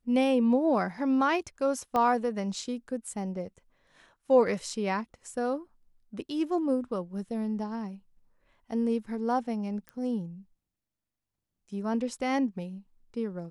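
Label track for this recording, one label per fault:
1.960000	1.960000	pop -17 dBFS
9.890000	9.890000	pop -27 dBFS

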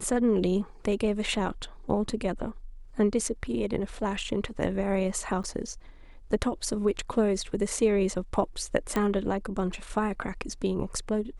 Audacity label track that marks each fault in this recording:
5.430000	5.440000	gap 8.3 ms
8.960000	8.960000	pop -14 dBFS

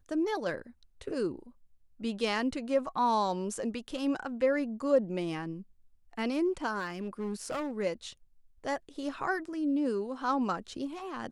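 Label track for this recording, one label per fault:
6.790000	7.710000	clipped -30.5 dBFS

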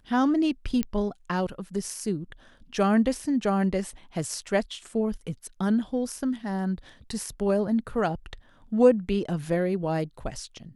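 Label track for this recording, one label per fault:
0.830000	0.830000	pop -12 dBFS

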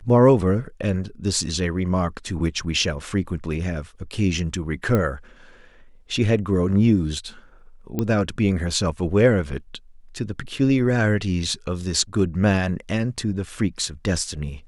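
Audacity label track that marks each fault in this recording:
4.950000	4.950000	pop -10 dBFS
7.990000	7.990000	pop -11 dBFS

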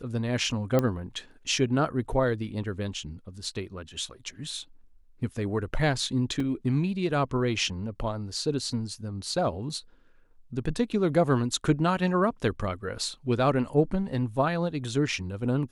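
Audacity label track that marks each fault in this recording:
0.790000	0.790000	pop -12 dBFS
6.400000	6.400000	gap 3.1 ms

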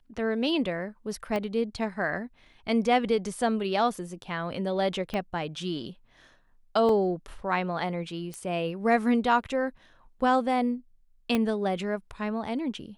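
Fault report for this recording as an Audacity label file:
1.360000	1.360000	pop -18 dBFS
5.140000	5.140000	pop -19 dBFS
6.890000	6.890000	gap 2.1 ms
8.340000	8.340000	pop -23 dBFS
11.350000	11.350000	pop -13 dBFS

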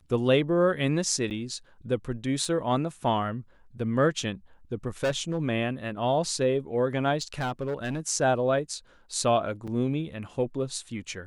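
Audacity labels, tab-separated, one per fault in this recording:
1.300000	1.310000	gap 8.9 ms
2.450000	2.450000	gap 2.4 ms
5.040000	5.380000	clipped -22 dBFS
7.210000	8.000000	clipped -25.5 dBFS
9.670000	9.680000	gap 6.3 ms

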